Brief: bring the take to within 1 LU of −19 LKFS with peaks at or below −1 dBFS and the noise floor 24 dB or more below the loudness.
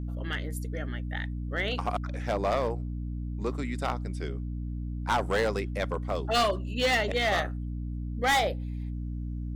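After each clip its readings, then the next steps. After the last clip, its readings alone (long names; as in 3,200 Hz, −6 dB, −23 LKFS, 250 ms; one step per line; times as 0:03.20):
share of clipped samples 1.3%; peaks flattened at −20.5 dBFS; mains hum 60 Hz; hum harmonics up to 300 Hz; level of the hum −32 dBFS; integrated loudness −30.0 LKFS; sample peak −20.5 dBFS; target loudness −19.0 LKFS
→ clipped peaks rebuilt −20.5 dBFS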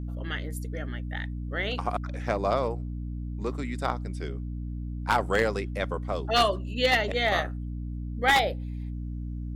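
share of clipped samples 0.0%; mains hum 60 Hz; hum harmonics up to 300 Hz; level of the hum −31 dBFS
→ hum removal 60 Hz, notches 5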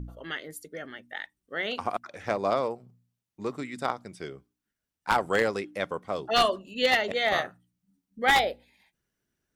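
mains hum none found; integrated loudness −28.0 LKFS; sample peak −10.5 dBFS; target loudness −19.0 LKFS
→ level +9 dB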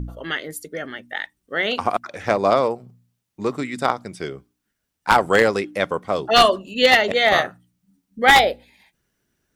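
integrated loudness −19.0 LKFS; sample peak −1.5 dBFS; background noise floor −77 dBFS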